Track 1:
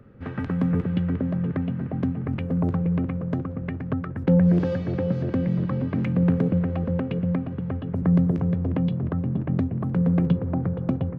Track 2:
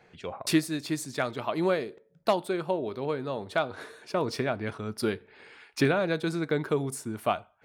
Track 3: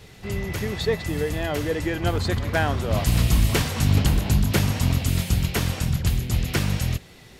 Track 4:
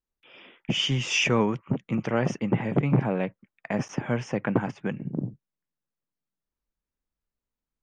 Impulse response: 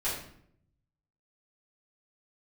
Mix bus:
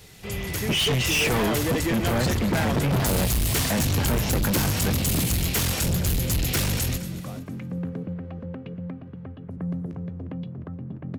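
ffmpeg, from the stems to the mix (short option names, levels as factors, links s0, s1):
-filter_complex "[0:a]aemphasis=mode=production:type=cd,adelay=1550,volume=0.15[s0];[1:a]alimiter=limit=0.0668:level=0:latency=1,volume=0.141[s1];[2:a]dynaudnorm=f=140:g=11:m=3.76,highshelf=f=5400:g=12,volume=0.282,asplit=2[s2][s3];[s3]volume=0.126[s4];[3:a]volume=1.33[s5];[s4]aecho=0:1:232|464|696|928|1160:1|0.37|0.137|0.0507|0.0187[s6];[s0][s1][s2][s5][s6]amix=inputs=5:normalize=0,acontrast=88,asoftclip=type=tanh:threshold=0.1"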